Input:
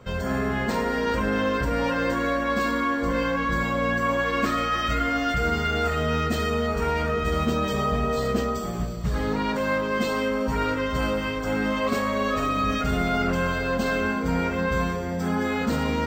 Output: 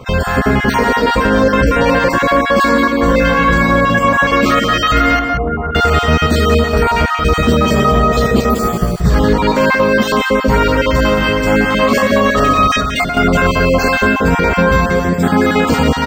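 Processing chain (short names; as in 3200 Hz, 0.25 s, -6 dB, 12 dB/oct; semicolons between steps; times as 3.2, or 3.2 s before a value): random spectral dropouts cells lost 28%; 5.19–5.75 ladder low-pass 1400 Hz, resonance 30%; 12.7–13.17 negative-ratio compressor -32 dBFS, ratio -1; outdoor echo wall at 31 m, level -7 dB; 8.5–9.01 careless resampling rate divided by 3×, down none, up hold; maximiser +15.5 dB; gain -1 dB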